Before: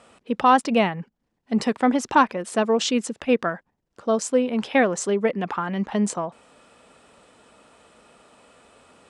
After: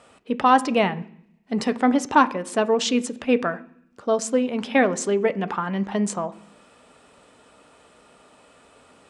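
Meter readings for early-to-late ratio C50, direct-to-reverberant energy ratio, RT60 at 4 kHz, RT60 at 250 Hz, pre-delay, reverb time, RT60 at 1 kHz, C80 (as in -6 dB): 19.0 dB, 11.0 dB, 0.75 s, 0.90 s, 3 ms, 0.65 s, 0.65 s, 22.0 dB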